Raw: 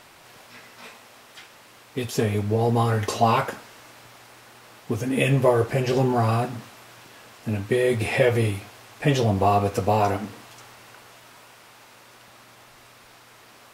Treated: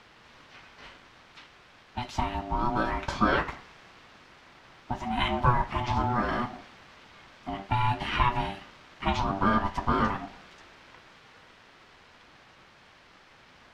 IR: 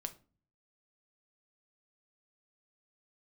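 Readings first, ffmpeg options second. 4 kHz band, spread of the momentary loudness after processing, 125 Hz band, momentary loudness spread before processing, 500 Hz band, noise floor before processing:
−2.5 dB, 16 LU, −9.0 dB, 12 LU, −13.0 dB, −51 dBFS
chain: -filter_complex "[0:a]acrossover=split=190 5300:gain=0.141 1 0.0631[link_01][link_02][link_03];[link_01][link_02][link_03]amix=inputs=3:normalize=0,aeval=exprs='val(0)*sin(2*PI*490*n/s)':channel_layout=same,volume=-1dB"

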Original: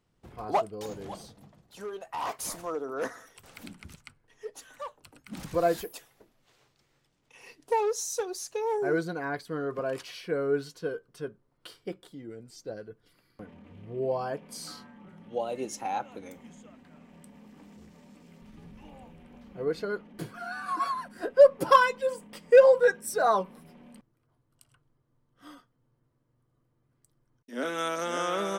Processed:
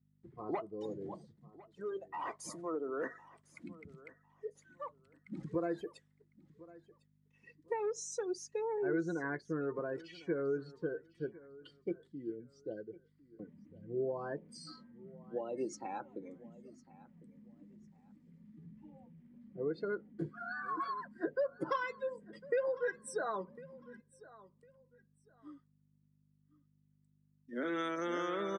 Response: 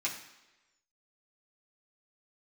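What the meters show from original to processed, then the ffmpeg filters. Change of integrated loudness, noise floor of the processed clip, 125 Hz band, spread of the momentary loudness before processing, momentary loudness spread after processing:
−12.0 dB, −73 dBFS, −5.5 dB, 22 LU, 21 LU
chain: -filter_complex "[0:a]afftdn=noise_reduction=20:noise_floor=-40,acompressor=threshold=-31dB:ratio=3,aeval=exprs='val(0)+0.000708*(sin(2*PI*50*n/s)+sin(2*PI*2*50*n/s)/2+sin(2*PI*3*50*n/s)/3+sin(2*PI*4*50*n/s)/4+sin(2*PI*5*50*n/s)/5)':channel_layout=same,highpass=130,equalizer=frequency=150:width_type=q:width=4:gain=6,equalizer=frequency=340:width_type=q:width=4:gain=9,equalizer=frequency=740:width_type=q:width=4:gain=-6,equalizer=frequency=1900:width_type=q:width=4:gain=8,equalizer=frequency=2700:width_type=q:width=4:gain=-4,equalizer=frequency=5900:width_type=q:width=4:gain=-4,lowpass=frequency=8400:width=0.5412,lowpass=frequency=8400:width=1.3066,asplit=2[link_01][link_02];[link_02]aecho=0:1:1053|2106:0.1|0.024[link_03];[link_01][link_03]amix=inputs=2:normalize=0,volume=-4.5dB"

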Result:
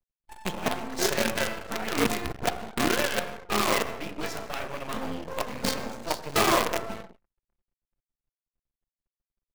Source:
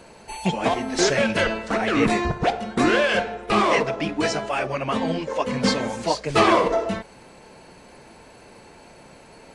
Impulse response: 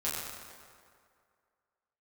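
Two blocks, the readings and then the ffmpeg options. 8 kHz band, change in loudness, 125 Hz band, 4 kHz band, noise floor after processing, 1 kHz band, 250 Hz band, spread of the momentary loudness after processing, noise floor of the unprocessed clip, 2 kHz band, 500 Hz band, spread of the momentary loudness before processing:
−0.5 dB, −6.5 dB, −8.5 dB, −3.5 dB, below −85 dBFS, −7.0 dB, −8.5 dB, 10 LU, −48 dBFS, −6.0 dB, −8.0 dB, 7 LU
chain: -filter_complex "[0:a]asplit=2[link_01][link_02];[1:a]atrim=start_sample=2205,afade=type=out:start_time=0.31:duration=0.01,atrim=end_sample=14112[link_03];[link_02][link_03]afir=irnorm=-1:irlink=0,volume=-8.5dB[link_04];[link_01][link_04]amix=inputs=2:normalize=0,acrusher=bits=3:dc=4:mix=0:aa=0.000001,anlmdn=10,volume=-8.5dB"

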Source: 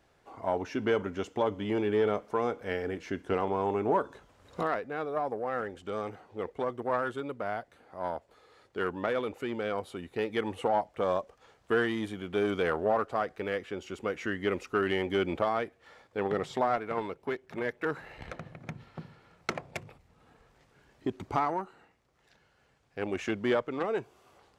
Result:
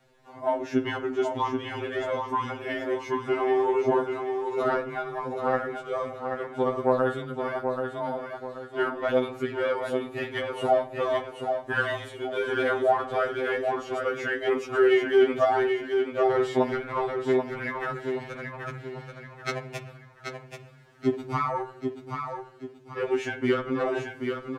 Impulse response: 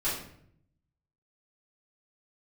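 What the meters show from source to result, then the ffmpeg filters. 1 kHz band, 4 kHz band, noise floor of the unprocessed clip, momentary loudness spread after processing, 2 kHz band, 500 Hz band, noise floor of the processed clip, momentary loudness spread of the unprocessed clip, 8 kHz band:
+4.0 dB, +4.0 dB, −67 dBFS, 13 LU, +5.5 dB, +5.5 dB, −49 dBFS, 12 LU, can't be measured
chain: -filter_complex "[0:a]aecho=1:1:782|1564|2346|3128:0.501|0.185|0.0686|0.0254,asplit=2[link_01][link_02];[1:a]atrim=start_sample=2205,lowpass=3200[link_03];[link_02][link_03]afir=irnorm=-1:irlink=0,volume=-17.5dB[link_04];[link_01][link_04]amix=inputs=2:normalize=0,afftfilt=real='re*2.45*eq(mod(b,6),0)':imag='im*2.45*eq(mod(b,6),0)':win_size=2048:overlap=0.75,volume=5dB"

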